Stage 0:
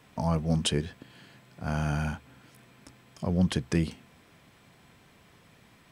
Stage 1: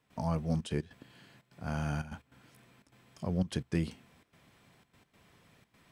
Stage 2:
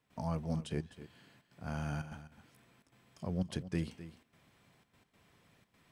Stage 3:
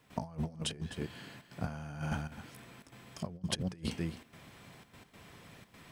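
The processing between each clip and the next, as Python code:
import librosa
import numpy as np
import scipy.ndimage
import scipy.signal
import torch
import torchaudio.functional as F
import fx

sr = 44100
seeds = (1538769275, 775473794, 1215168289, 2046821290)

y1 = fx.step_gate(x, sr, bpm=149, pattern='.xxxxx.x.xxxxx', floor_db=-12.0, edge_ms=4.5)
y1 = y1 * 10.0 ** (-5.0 / 20.0)
y2 = y1 + 10.0 ** (-14.0 / 20.0) * np.pad(y1, (int(258 * sr / 1000.0), 0))[:len(y1)]
y2 = y2 * 10.0 ** (-4.0 / 20.0)
y3 = fx.over_compress(y2, sr, threshold_db=-43.0, ratio=-0.5)
y3 = y3 * 10.0 ** (6.5 / 20.0)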